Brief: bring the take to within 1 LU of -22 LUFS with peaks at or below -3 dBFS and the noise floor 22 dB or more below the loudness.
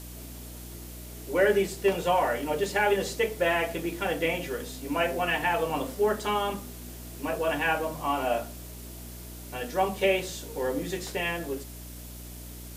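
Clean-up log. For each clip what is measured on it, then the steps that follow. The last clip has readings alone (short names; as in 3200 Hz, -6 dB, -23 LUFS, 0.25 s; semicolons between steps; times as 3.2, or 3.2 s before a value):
hum 60 Hz; harmonics up to 300 Hz; hum level -41 dBFS; noise floor -42 dBFS; noise floor target -50 dBFS; loudness -28.0 LUFS; peak -12.0 dBFS; loudness target -22.0 LUFS
-> notches 60/120/180/240/300 Hz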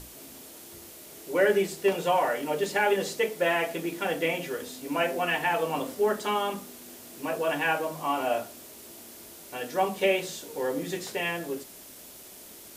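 hum none; noise floor -47 dBFS; noise floor target -50 dBFS
-> denoiser 6 dB, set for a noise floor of -47 dBFS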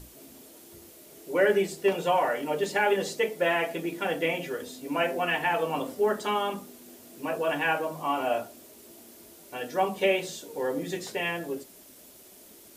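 noise floor -52 dBFS; loudness -28.0 LUFS; peak -12.0 dBFS; loudness target -22.0 LUFS
-> gain +6 dB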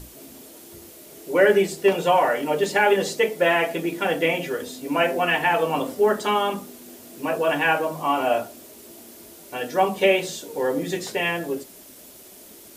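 loudness -22.0 LUFS; peak -6.0 dBFS; noise floor -46 dBFS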